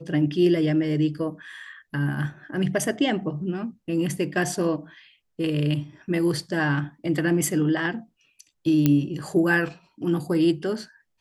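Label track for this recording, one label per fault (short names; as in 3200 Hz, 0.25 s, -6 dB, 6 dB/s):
8.860000	8.860000	pop -7 dBFS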